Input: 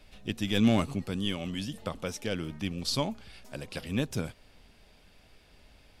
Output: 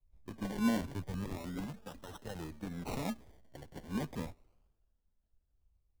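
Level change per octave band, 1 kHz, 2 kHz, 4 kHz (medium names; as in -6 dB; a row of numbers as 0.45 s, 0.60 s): -5.0 dB, -8.5 dB, -16.5 dB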